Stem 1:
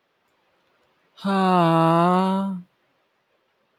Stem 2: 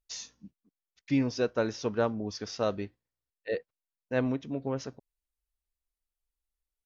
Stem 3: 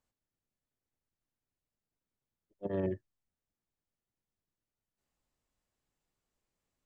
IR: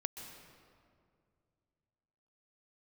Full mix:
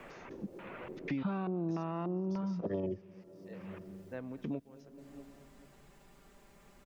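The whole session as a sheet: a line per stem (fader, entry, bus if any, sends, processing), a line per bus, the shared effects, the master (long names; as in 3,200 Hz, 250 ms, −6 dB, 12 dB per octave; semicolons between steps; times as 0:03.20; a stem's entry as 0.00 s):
−14.0 dB, 0.00 s, send −14.5 dB, no echo send, tilt shelving filter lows +4.5 dB, about 730 Hz; downward compressor, threshold −20 dBFS, peak gain reduction 8.5 dB; auto-filter low-pass square 1.7 Hz 380–2,500 Hz
−18.5 dB, 0.00 s, send −14.5 dB, echo send −23.5 dB, gate pattern "..x...xx." 98 BPM −24 dB
0.0 dB, 0.00 s, send −20 dB, no echo send, downward compressor, threshold −30 dBFS, peak gain reduction 3 dB; flanger swept by the level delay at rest 5.1 ms, full sweep at −32 dBFS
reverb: on, RT60 2.3 s, pre-delay 119 ms
echo: repeating echo 215 ms, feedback 59%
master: multiband upward and downward compressor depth 100%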